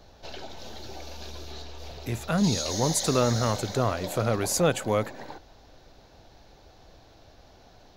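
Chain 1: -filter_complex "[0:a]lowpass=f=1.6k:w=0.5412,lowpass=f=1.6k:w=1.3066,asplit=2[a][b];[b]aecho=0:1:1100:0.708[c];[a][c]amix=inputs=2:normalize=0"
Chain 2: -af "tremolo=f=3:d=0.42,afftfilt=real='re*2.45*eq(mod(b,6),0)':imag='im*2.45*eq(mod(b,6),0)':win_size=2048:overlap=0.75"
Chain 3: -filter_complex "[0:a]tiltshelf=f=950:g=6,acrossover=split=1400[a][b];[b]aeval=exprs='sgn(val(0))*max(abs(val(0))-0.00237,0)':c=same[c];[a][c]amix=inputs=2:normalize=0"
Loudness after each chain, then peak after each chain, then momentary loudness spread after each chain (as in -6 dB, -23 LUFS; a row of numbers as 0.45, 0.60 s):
-26.5, -29.5, -23.0 LUFS; -8.5, -12.5, -7.5 dBFS; 20, 21, 21 LU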